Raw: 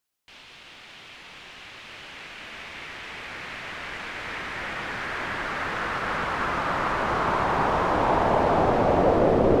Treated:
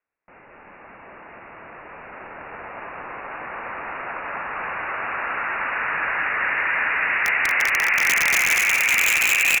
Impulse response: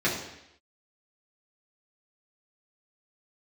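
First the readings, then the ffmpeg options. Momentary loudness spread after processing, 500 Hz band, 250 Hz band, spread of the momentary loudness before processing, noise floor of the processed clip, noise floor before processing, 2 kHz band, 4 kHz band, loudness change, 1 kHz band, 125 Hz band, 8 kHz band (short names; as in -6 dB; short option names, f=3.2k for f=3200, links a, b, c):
19 LU, -12.5 dB, -15.0 dB, 21 LU, -48 dBFS, -48 dBFS, +11.5 dB, +7.0 dB, +5.0 dB, -3.0 dB, -16.0 dB, +21.0 dB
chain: -filter_complex "[0:a]flanger=delay=5.9:depth=3:regen=86:speed=1.2:shape=sinusoidal,highpass=f=730:p=1,lowpass=f=2.6k:t=q:w=0.5098,lowpass=f=2.6k:t=q:w=0.6013,lowpass=f=2.6k:t=q:w=0.9,lowpass=f=2.6k:t=q:w=2.563,afreqshift=-3000,aeval=exprs='(mod(11.2*val(0)+1,2)-1)/11.2':c=same,asplit=2[a][b];[b]aecho=0:1:230|414|561.2|679|773.2:0.631|0.398|0.251|0.158|0.1[c];[a][c]amix=inputs=2:normalize=0,volume=8.5dB"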